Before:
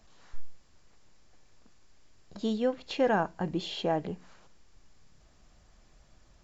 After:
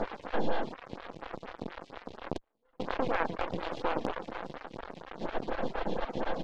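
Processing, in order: per-bin compression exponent 0.2; echo 0.114 s -6.5 dB; half-wave rectifier; 2.37–2.8 flipped gate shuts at -30 dBFS, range -34 dB; reverb removal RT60 0.54 s; in parallel at -5.5 dB: wrapped overs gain 10.5 dB; on the sum: LPF 3900 Hz 12 dB/oct; photocell phaser 4.2 Hz; gain -4 dB

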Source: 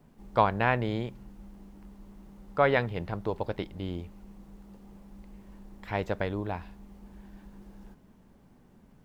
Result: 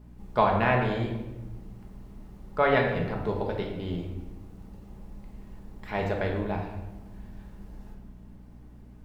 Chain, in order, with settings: shoebox room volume 510 m³, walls mixed, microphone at 1.4 m; hum 60 Hz, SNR 19 dB; gain -1 dB

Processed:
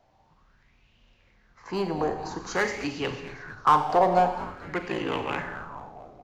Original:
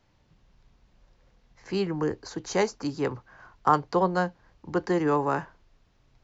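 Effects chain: 4.82–5.38 ring modulator 29 Hz; hard clip -22 dBFS, distortion -9 dB; on a send: frequency-shifting echo 0.225 s, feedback 63%, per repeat -130 Hz, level -14.5 dB; on the sum: Schroeder reverb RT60 1.2 s, combs from 30 ms, DRR 6.5 dB; LFO bell 0.49 Hz 690–2900 Hz +17 dB; gain -3 dB

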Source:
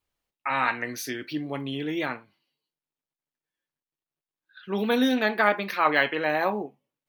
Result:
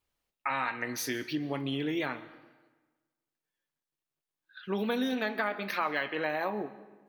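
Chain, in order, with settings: compressor 5:1, threshold -28 dBFS, peak gain reduction 12 dB; on a send: reverb RT60 1.3 s, pre-delay 85 ms, DRR 16 dB

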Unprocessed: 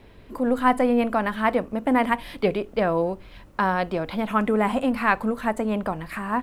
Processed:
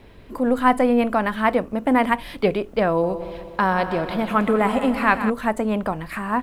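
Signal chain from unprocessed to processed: 2.91–5.3 multi-head echo 62 ms, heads second and third, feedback 62%, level -13 dB; gain +2.5 dB

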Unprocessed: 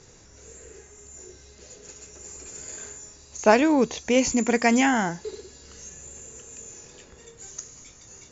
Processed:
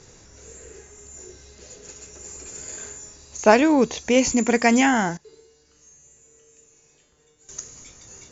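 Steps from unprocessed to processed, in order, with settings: 5.17–7.49 resonator 150 Hz, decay 0.92 s, harmonics all, mix 90%; gain +2.5 dB

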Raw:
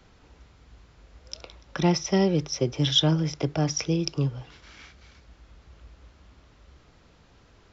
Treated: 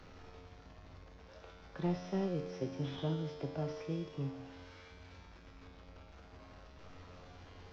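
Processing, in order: delta modulation 32 kbps, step -35.5 dBFS; high shelf 2100 Hz -11.5 dB; notches 60/120/180/240/300/360 Hz; resonator 90 Hz, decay 1.5 s, harmonics all, mix 90%; gain +4.5 dB

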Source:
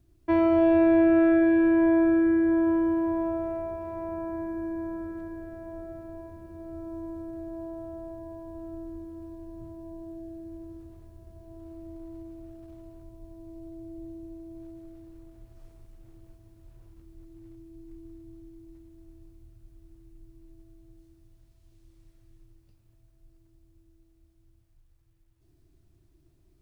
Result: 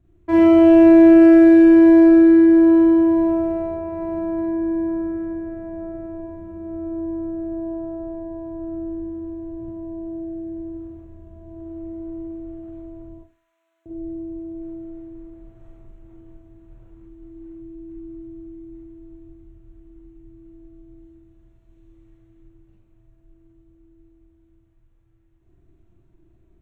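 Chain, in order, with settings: Wiener smoothing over 9 samples; 13.18–13.86 HPF 1300 Hz 24 dB/oct; Schroeder reverb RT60 0.34 s, combs from 33 ms, DRR -3.5 dB; gain +1.5 dB

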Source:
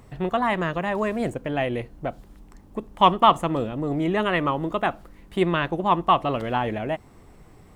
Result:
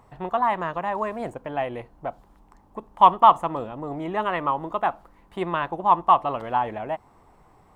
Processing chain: bell 920 Hz +13.5 dB 1.2 oct; gain -9 dB

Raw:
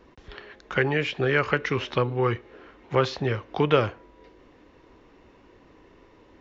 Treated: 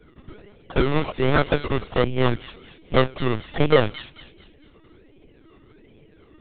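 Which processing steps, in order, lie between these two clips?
Wiener smoothing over 41 samples; low-pass opened by the level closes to 1900 Hz, open at -18.5 dBFS; decimation with a swept rate 22×, swing 60% 1.3 Hz; thin delay 0.223 s, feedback 38%, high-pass 3100 Hz, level -6 dB; LPC vocoder at 8 kHz pitch kept; gain +5 dB

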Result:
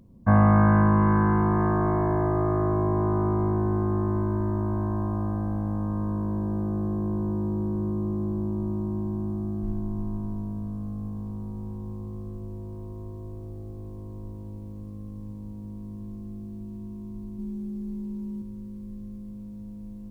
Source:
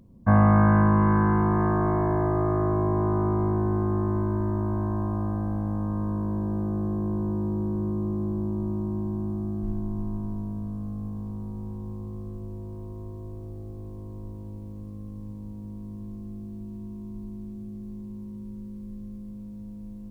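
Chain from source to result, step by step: 17.38–18.42 comb 5.1 ms, depth 83%

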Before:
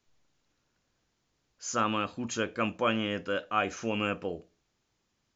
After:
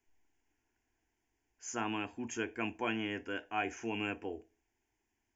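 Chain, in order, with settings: fixed phaser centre 820 Hz, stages 8; gain -2 dB

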